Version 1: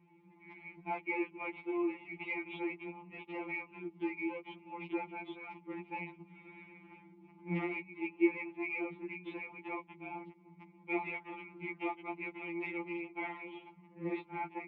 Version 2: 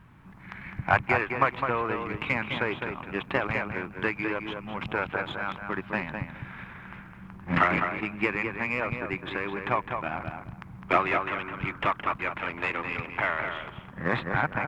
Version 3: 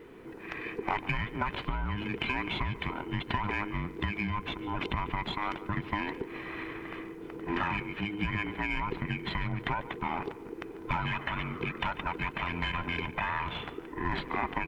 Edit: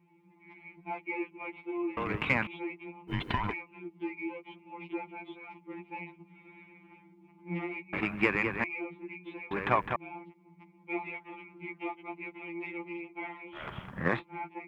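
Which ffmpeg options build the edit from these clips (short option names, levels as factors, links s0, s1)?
-filter_complex "[1:a]asplit=4[s0][s1][s2][s3];[0:a]asplit=6[s4][s5][s6][s7][s8][s9];[s4]atrim=end=1.972[s10];[s0]atrim=start=1.968:end=2.472[s11];[s5]atrim=start=2.468:end=3.11[s12];[2:a]atrim=start=3.07:end=3.54[s13];[s6]atrim=start=3.5:end=7.932[s14];[s1]atrim=start=7.928:end=8.642[s15];[s7]atrim=start=8.638:end=9.512[s16];[s2]atrim=start=9.508:end=9.962[s17];[s8]atrim=start=9.958:end=13.68[s18];[s3]atrim=start=13.52:end=14.23[s19];[s9]atrim=start=14.07[s20];[s10][s11]acrossfade=d=0.004:c1=hsin:c2=hsin[s21];[s21][s12]acrossfade=d=0.004:c1=hsin:c2=hsin[s22];[s22][s13]acrossfade=d=0.04:c1=tri:c2=tri[s23];[s23][s14]acrossfade=d=0.04:c1=tri:c2=tri[s24];[s24][s15]acrossfade=d=0.004:c1=hsin:c2=hsin[s25];[s25][s16]acrossfade=d=0.004:c1=hsin:c2=hsin[s26];[s26][s17]acrossfade=d=0.004:c1=hsin:c2=hsin[s27];[s27][s18]acrossfade=d=0.004:c1=hsin:c2=hsin[s28];[s28][s19]acrossfade=d=0.16:c1=tri:c2=tri[s29];[s29][s20]acrossfade=d=0.16:c1=tri:c2=tri"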